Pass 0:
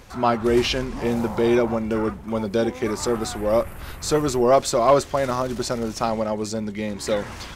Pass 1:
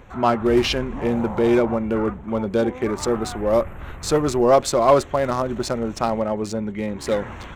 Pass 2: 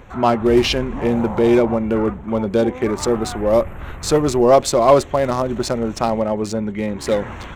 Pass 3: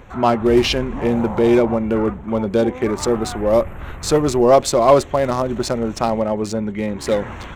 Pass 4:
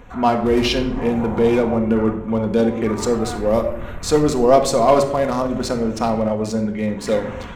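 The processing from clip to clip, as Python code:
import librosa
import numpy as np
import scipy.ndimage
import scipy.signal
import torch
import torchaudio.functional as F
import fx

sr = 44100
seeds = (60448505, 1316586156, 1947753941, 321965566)

y1 = fx.wiener(x, sr, points=9)
y1 = y1 * 10.0 ** (1.5 / 20.0)
y2 = fx.dynamic_eq(y1, sr, hz=1400.0, q=2.0, threshold_db=-34.0, ratio=4.0, max_db=-4)
y2 = y2 * 10.0 ** (3.5 / 20.0)
y3 = y2
y4 = fx.room_shoebox(y3, sr, seeds[0], volume_m3=2000.0, walls='furnished', distance_m=1.8)
y4 = y4 * 10.0 ** (-2.5 / 20.0)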